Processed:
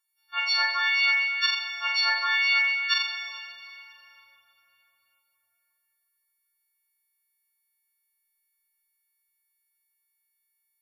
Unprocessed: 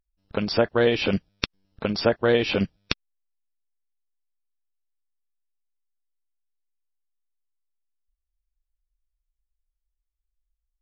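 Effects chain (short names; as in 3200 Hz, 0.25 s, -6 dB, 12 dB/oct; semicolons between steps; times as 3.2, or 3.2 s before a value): frequency quantiser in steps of 4 st; inverse Chebyshev high-pass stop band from 520 Hz, stop band 40 dB; high shelf 4300 Hz -7 dB; reverse; compressor, threshold -31 dBFS, peak gain reduction 13.5 dB; reverse; flutter echo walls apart 7.2 m, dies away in 0.67 s; on a send at -5.5 dB: reverb RT60 4.1 s, pre-delay 19 ms; on the sum: gain +7.5 dB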